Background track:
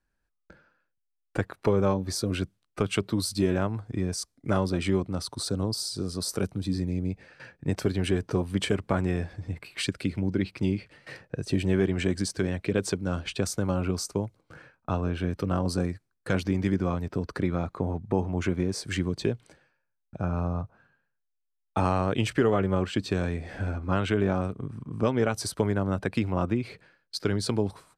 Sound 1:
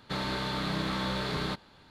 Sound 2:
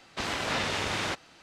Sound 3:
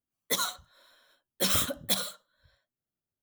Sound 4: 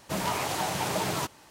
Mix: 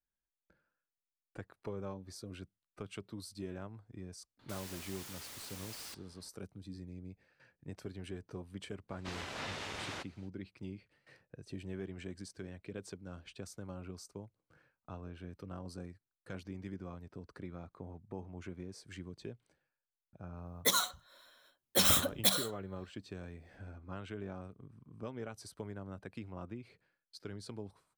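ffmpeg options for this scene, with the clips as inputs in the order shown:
-filter_complex "[0:a]volume=-18.5dB[a];[1:a]aeval=exprs='(mod(59.6*val(0)+1,2)-1)/59.6':c=same,atrim=end=1.9,asetpts=PTS-STARTPTS,volume=-9dB,afade=t=in:d=0.004:c=hsin,afade=t=out:st=1.896:d=0.004:c=hsin,adelay=4390[b];[2:a]atrim=end=1.42,asetpts=PTS-STARTPTS,volume=-12dB,afade=t=in:d=0.05,afade=t=out:st=1.37:d=0.05,adelay=8880[c];[3:a]atrim=end=3.22,asetpts=PTS-STARTPTS,volume=-0.5dB,afade=t=in:d=0.004:c=hsin,afade=t=out:st=3.216:d=0.004:c=hsin,adelay=20350[d];[a][b][c][d]amix=inputs=4:normalize=0"

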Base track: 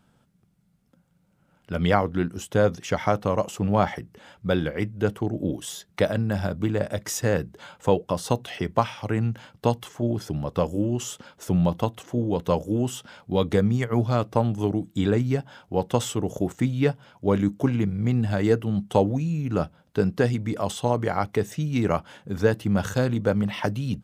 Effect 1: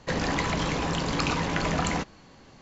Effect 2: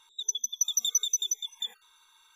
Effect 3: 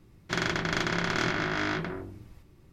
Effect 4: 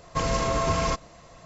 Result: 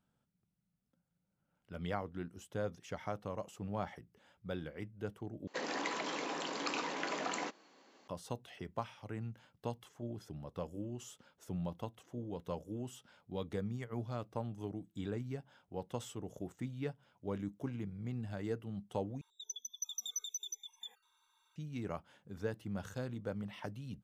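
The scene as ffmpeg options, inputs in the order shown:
-filter_complex "[0:a]volume=-18dB[a];[1:a]highpass=f=270:w=0.5412,highpass=f=270:w=1.3066[b];[2:a]equalizer=f=730:t=o:w=1.6:g=6.5[c];[a]asplit=3[d][e][f];[d]atrim=end=5.474[g];[b]atrim=end=2.61,asetpts=PTS-STARTPTS,volume=-9.5dB[h];[e]atrim=start=8.076:end=19.214[i];[c]atrim=end=2.35,asetpts=PTS-STARTPTS,volume=-14.5dB[j];[f]atrim=start=21.556[k];[g][h]acrossfade=d=0.004:c1=hsin:c2=hsin[l];[l][i]acrossfade=d=0.004:c1=hsin:c2=hsin[m];[m][j]acrossfade=d=0.004:c1=hsin:c2=hsin[n];[n][k]acrossfade=d=0.004:c1=hsin:c2=hsin"

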